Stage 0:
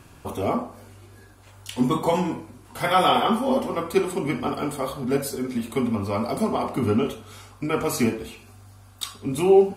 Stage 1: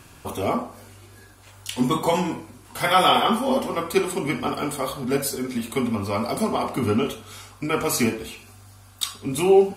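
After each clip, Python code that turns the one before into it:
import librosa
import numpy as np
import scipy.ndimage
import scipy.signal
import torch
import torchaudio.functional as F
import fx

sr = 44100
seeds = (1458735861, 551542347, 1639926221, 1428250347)

y = fx.tilt_shelf(x, sr, db=-3.0, hz=1400.0)
y = y * librosa.db_to_amplitude(2.5)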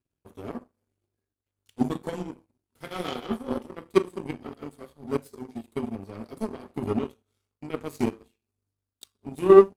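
y = fx.low_shelf_res(x, sr, hz=550.0, db=9.0, q=1.5)
y = fx.power_curve(y, sr, exponent=2.0)
y = y * librosa.db_to_amplitude(-5.0)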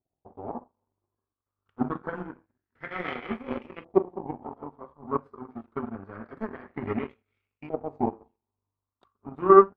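y = fx.filter_lfo_lowpass(x, sr, shape='saw_up', hz=0.26, low_hz=710.0, high_hz=2600.0, q=5.6)
y = y * librosa.db_to_amplitude(-3.5)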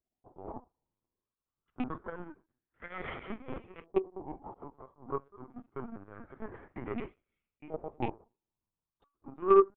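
y = fx.rattle_buzz(x, sr, strikes_db=-27.0, level_db=-22.0)
y = fx.lpc_vocoder(y, sr, seeds[0], excitation='pitch_kept', order=16)
y = y * librosa.db_to_amplitude(-7.0)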